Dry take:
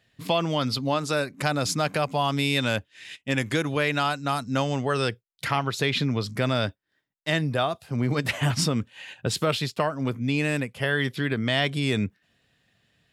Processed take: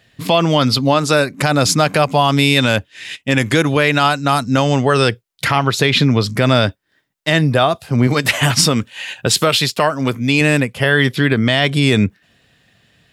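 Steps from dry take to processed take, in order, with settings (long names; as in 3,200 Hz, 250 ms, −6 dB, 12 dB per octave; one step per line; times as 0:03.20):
0:08.07–0:10.41: spectral tilt +1.5 dB per octave
boost into a limiter +13 dB
level −1 dB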